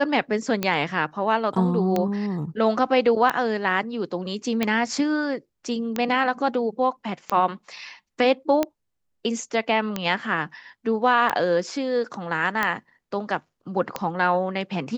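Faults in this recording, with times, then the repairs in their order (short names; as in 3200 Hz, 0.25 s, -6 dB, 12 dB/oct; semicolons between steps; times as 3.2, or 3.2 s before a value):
tick 45 rpm -9 dBFS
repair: de-click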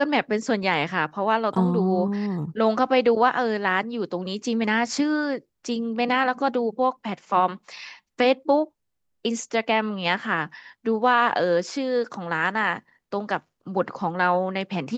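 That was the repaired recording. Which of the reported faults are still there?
none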